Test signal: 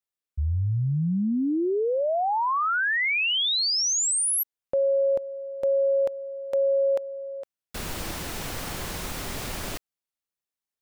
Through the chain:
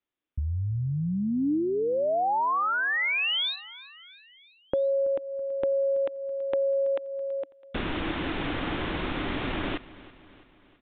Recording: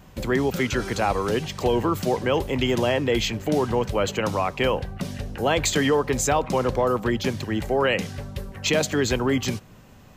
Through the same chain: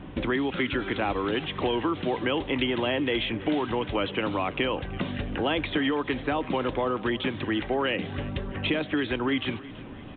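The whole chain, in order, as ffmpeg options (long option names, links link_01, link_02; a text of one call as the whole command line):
ffmpeg -i in.wav -filter_complex "[0:a]equalizer=frequency=300:width_type=o:width=0.56:gain=12,acrossover=split=900|2700[link_01][link_02][link_03];[link_01]acompressor=threshold=-34dB:ratio=4[link_04];[link_02]acompressor=threshold=-38dB:ratio=4[link_05];[link_03]acompressor=threshold=-38dB:ratio=4[link_06];[link_04][link_05][link_06]amix=inputs=3:normalize=0,aecho=1:1:329|658|987|1316:0.112|0.0606|0.0327|0.0177,aresample=8000,aresample=44100,volume=5dB" out.wav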